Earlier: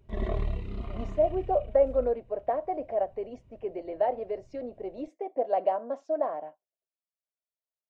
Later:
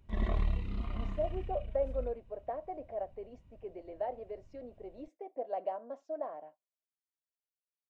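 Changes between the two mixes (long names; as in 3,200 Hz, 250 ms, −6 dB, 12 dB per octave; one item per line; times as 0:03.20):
speech −10.0 dB
background: add thirty-one-band graphic EQ 125 Hz −8 dB, 400 Hz −11 dB, 630 Hz −7 dB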